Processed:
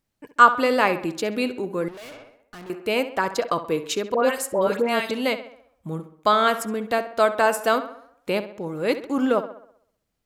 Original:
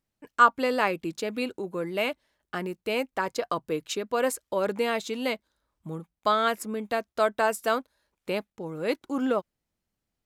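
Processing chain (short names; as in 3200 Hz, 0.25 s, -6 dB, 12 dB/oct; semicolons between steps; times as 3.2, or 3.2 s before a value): 4.14–5.11 dispersion highs, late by 0.104 s, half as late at 1500 Hz; tape echo 66 ms, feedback 54%, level -11.5 dB, low-pass 3300 Hz; 1.88–2.7 tube stage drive 44 dB, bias 0.6; gain +5 dB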